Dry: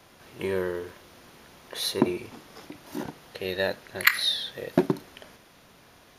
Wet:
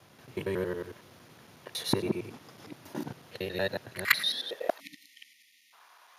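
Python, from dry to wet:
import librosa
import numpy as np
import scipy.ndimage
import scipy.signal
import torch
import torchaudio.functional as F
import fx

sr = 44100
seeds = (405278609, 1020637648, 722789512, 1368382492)

y = fx.local_reverse(x, sr, ms=92.0)
y = fx.spec_erase(y, sr, start_s=4.8, length_s=0.93, low_hz=320.0, high_hz=1800.0)
y = fx.filter_sweep_highpass(y, sr, from_hz=110.0, to_hz=990.0, start_s=4.07, end_s=4.82, q=2.4)
y = y * 10.0 ** (-4.0 / 20.0)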